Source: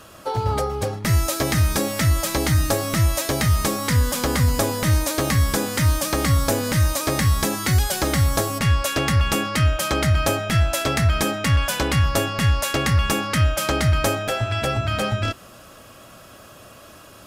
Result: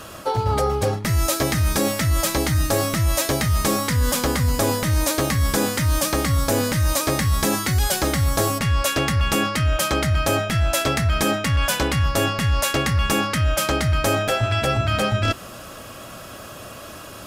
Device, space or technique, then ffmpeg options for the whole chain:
compression on the reversed sound: -af "areverse,acompressor=threshold=-24dB:ratio=6,areverse,volume=7dB"

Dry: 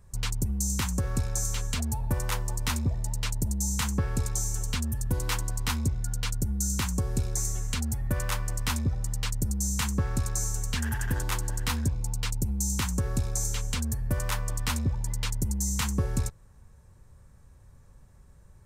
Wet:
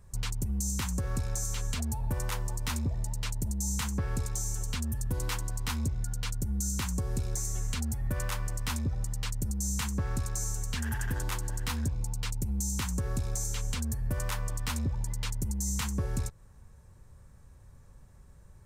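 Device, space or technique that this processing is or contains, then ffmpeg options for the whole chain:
clipper into limiter: -af "asoftclip=type=hard:threshold=-18.5dB,alimiter=limit=-23dB:level=0:latency=1:release=154"

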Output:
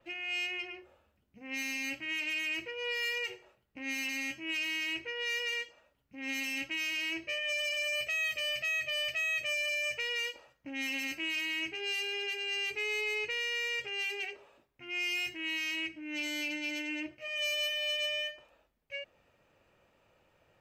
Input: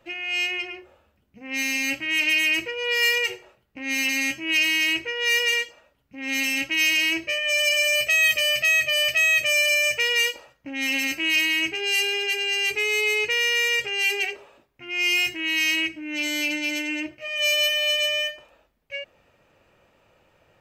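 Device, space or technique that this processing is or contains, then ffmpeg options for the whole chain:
soft clipper into limiter: -af "asoftclip=type=tanh:threshold=-13.5dB,alimiter=limit=-19dB:level=0:latency=1:release=479,adynamicequalizer=threshold=0.00631:dfrequency=6300:dqfactor=0.7:tfrequency=6300:tqfactor=0.7:attack=5:release=100:ratio=0.375:range=4:mode=cutabove:tftype=highshelf,volume=-7.5dB"

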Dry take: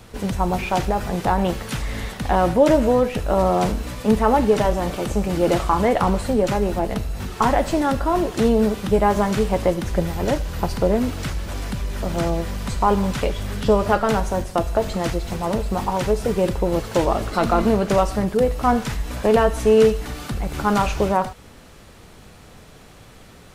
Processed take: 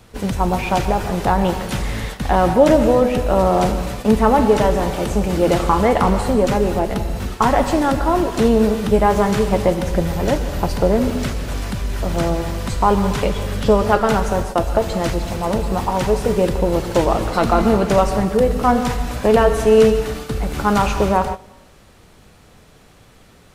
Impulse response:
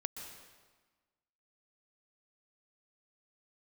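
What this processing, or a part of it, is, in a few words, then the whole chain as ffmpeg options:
keyed gated reverb: -filter_complex "[0:a]asplit=3[a][b][c];[1:a]atrim=start_sample=2205[d];[b][d]afir=irnorm=-1:irlink=0[e];[c]apad=whole_len=1038517[f];[e][f]sidechaingate=range=-16dB:threshold=-31dB:ratio=16:detection=peak,volume=4dB[g];[a][g]amix=inputs=2:normalize=0,volume=-4.5dB"

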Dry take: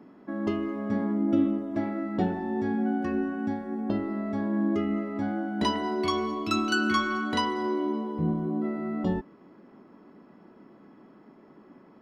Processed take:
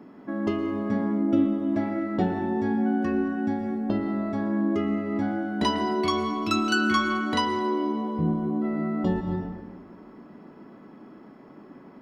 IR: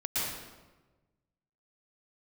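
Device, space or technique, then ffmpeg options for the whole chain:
ducked reverb: -filter_complex "[0:a]asplit=3[a][b][c];[1:a]atrim=start_sample=2205[d];[b][d]afir=irnorm=-1:irlink=0[e];[c]apad=whole_len=529757[f];[e][f]sidechaincompress=threshold=-36dB:ratio=8:attack=16:release=169,volume=-8dB[g];[a][g]amix=inputs=2:normalize=0,volume=1.5dB"

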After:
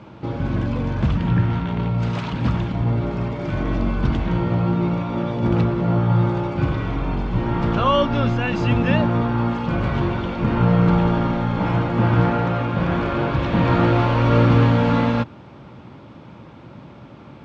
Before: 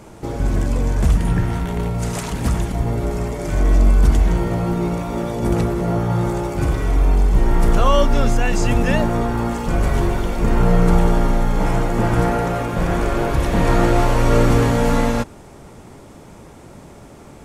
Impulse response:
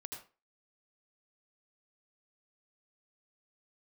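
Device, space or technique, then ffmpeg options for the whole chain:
guitar cabinet: -af "highpass=100,equalizer=f=120:t=q:w=4:g=4,equalizer=f=420:t=q:w=4:g=-8,equalizer=f=710:t=q:w=4:g=-6,equalizer=f=1.9k:t=q:w=4:g=-5,lowpass=f=3.8k:w=0.5412,lowpass=f=3.8k:w=1.3066,volume=1.5dB"

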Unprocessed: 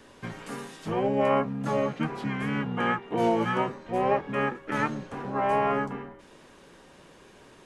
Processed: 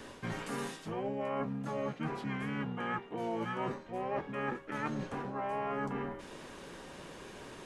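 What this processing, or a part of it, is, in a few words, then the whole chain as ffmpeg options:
compression on the reversed sound: -af "areverse,acompressor=threshold=-39dB:ratio=6,areverse,volume=4.5dB"

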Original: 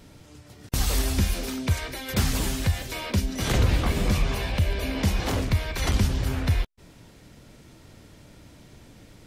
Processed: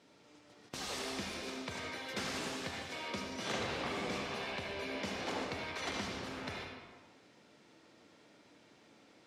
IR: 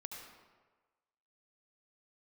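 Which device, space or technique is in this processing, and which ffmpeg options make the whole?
supermarket ceiling speaker: -filter_complex "[0:a]highpass=290,lowpass=6.1k[a];[1:a]atrim=start_sample=2205[b];[a][b]afir=irnorm=-1:irlink=0,volume=-4.5dB"

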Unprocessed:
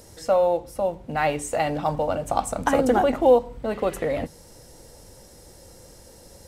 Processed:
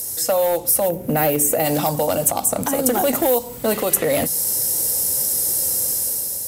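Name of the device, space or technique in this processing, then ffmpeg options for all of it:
FM broadcast chain: -filter_complex "[0:a]asplit=3[a][b][c];[a]afade=t=out:st=0.88:d=0.02[d];[b]equalizer=f=125:t=o:w=1:g=4,equalizer=f=250:t=o:w=1:g=5,equalizer=f=500:t=o:w=1:g=7,equalizer=f=1k:t=o:w=1:g=-7,equalizer=f=4k:t=o:w=1:g=-10,equalizer=f=8k:t=o:w=1:g=-8,afade=t=in:st=0.88:d=0.02,afade=t=out:st=1.64:d=0.02[e];[c]afade=t=in:st=1.64:d=0.02[f];[d][e][f]amix=inputs=3:normalize=0,highpass=79,dynaudnorm=f=250:g=5:m=8dB,acrossover=split=88|780|3800[g][h][i][j];[g]acompressor=threshold=-54dB:ratio=4[k];[h]acompressor=threshold=-20dB:ratio=4[l];[i]acompressor=threshold=-31dB:ratio=4[m];[j]acompressor=threshold=-42dB:ratio=4[n];[k][l][m][n]amix=inputs=4:normalize=0,aemphasis=mode=production:type=50fm,alimiter=limit=-13.5dB:level=0:latency=1:release=176,asoftclip=type=hard:threshold=-17dB,lowpass=f=15k:w=0.5412,lowpass=f=15k:w=1.3066,aemphasis=mode=production:type=50fm,volume=4.5dB"

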